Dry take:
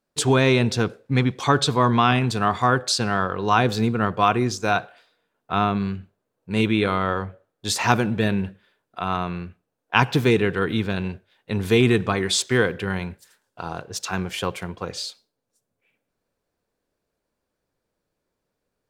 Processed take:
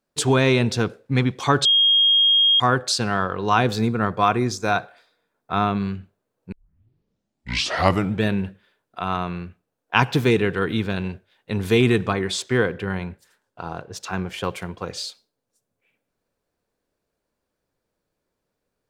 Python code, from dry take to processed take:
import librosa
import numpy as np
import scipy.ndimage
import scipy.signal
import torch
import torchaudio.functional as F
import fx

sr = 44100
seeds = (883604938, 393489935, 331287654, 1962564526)

y = fx.notch(x, sr, hz=2900.0, q=5.9, at=(3.77, 5.67))
y = fx.high_shelf(y, sr, hz=3100.0, db=-7.5, at=(12.13, 14.44))
y = fx.edit(y, sr, fx.bleep(start_s=1.65, length_s=0.95, hz=3250.0, db=-13.0),
    fx.tape_start(start_s=6.52, length_s=1.72), tone=tone)